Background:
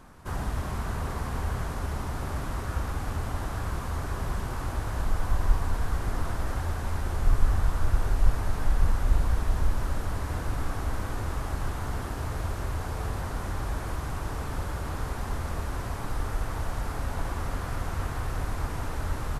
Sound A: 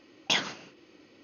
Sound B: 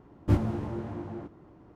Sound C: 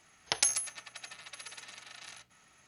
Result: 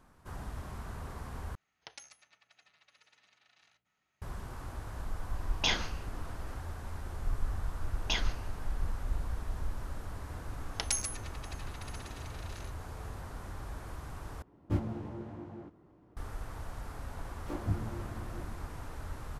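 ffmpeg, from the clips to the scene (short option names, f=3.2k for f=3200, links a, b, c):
-filter_complex "[3:a]asplit=2[a][b];[1:a]asplit=2[c][d];[2:a]asplit=2[e][f];[0:a]volume=-11dB[g];[a]lowpass=4.8k[h];[c]asplit=2[i][j];[j]adelay=34,volume=-5dB[k];[i][k]amix=inputs=2:normalize=0[l];[b]acontrast=36[m];[f]acrossover=split=270|2300[n][o][p];[o]adelay=30[q];[n]adelay=200[r];[r][q][p]amix=inputs=3:normalize=0[s];[g]asplit=3[t][u][v];[t]atrim=end=1.554[w];[h]atrim=end=2.67,asetpts=PTS-STARTPTS,volume=-17dB[x];[u]atrim=start=4.216:end=14.424[y];[e]atrim=end=1.75,asetpts=PTS-STARTPTS,volume=-7.5dB[z];[v]atrim=start=16.166[aa];[l]atrim=end=1.23,asetpts=PTS-STARTPTS,volume=-4dB,afade=t=in:d=0.004:c=hsin,afade=t=out:st=1.226:d=0.004:c=hsin,adelay=5340[ab];[d]atrim=end=1.23,asetpts=PTS-STARTPTS,volume=-7dB,afade=t=in:d=0.004:c=hsin,afade=t=out:st=1.226:d=0.004:c=hsin,adelay=7800[ac];[m]atrim=end=2.67,asetpts=PTS-STARTPTS,volume=-10dB,afade=t=in:d=0.004:c=hsin,afade=t=out:st=2.666:d=0.004:c=hsin,adelay=10480[ad];[s]atrim=end=1.75,asetpts=PTS-STARTPTS,volume=-8dB,afade=t=in:d=0.004:c=hsin,afade=t=out:st=1.746:d=0.004:c=hsin,adelay=17180[ae];[w][x]acrossfade=d=0.004:c1=hsin:c2=hsin[af];[af][y]acrossfade=d=0.004:c1=hsin:c2=hsin[ag];[ag][z]acrossfade=d=0.004:c1=hsin:c2=hsin[ah];[ah][aa]acrossfade=d=0.004:c1=hsin:c2=hsin[ai];[ai][ab][ac][ad][ae]amix=inputs=5:normalize=0"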